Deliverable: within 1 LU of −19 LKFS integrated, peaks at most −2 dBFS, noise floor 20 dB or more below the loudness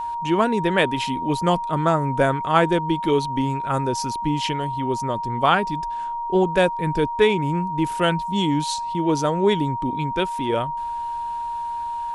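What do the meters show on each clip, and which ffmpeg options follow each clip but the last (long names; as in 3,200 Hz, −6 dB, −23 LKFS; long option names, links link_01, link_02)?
interfering tone 940 Hz; level of the tone −25 dBFS; integrated loudness −22.0 LKFS; sample peak −4.0 dBFS; target loudness −19.0 LKFS
→ -af "bandreject=frequency=940:width=30"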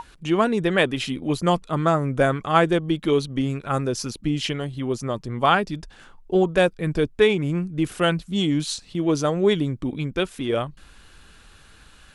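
interfering tone none found; integrated loudness −23.0 LKFS; sample peak −4.5 dBFS; target loudness −19.0 LKFS
→ -af "volume=4dB,alimiter=limit=-2dB:level=0:latency=1"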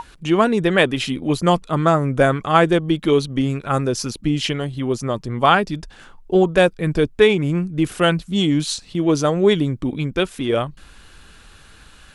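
integrated loudness −19.0 LKFS; sample peak −2.0 dBFS; background noise floor −47 dBFS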